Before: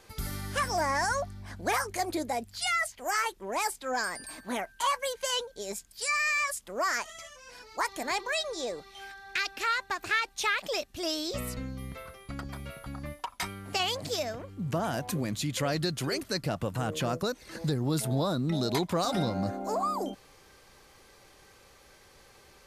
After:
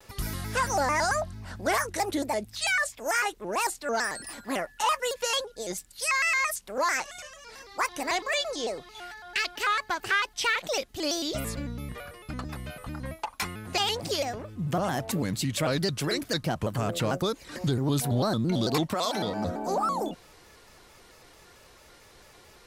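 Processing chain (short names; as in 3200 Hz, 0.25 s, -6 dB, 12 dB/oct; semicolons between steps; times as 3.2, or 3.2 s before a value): 18.93–19.46 HPF 800 Hz -> 200 Hz 6 dB/oct; in parallel at -8.5 dB: hard clip -24 dBFS, distortion -17 dB; on the sum: shaped vibrato square 4.5 Hz, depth 160 cents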